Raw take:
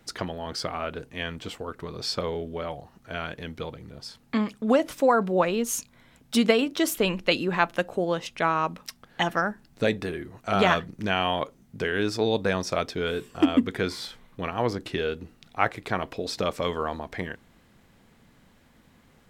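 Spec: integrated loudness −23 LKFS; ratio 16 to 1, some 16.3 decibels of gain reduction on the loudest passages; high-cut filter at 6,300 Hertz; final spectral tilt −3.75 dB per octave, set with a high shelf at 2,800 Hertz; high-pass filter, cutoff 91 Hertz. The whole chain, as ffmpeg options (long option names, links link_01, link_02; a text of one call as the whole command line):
ffmpeg -i in.wav -af "highpass=91,lowpass=6300,highshelf=frequency=2800:gain=5.5,acompressor=threshold=-31dB:ratio=16,volume=14dB" out.wav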